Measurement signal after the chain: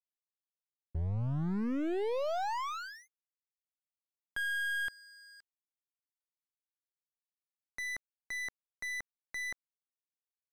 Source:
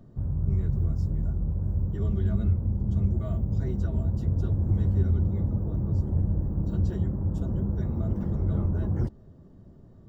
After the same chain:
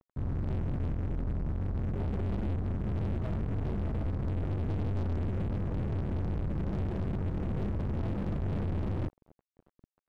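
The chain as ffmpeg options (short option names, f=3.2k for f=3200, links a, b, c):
-af "lowpass=1k,aeval=exprs='sgn(val(0))*max(abs(val(0))-0.00668,0)':c=same,aeval=exprs='(tanh(70.8*val(0)+0.45)-tanh(0.45))/70.8':c=same,volume=7dB"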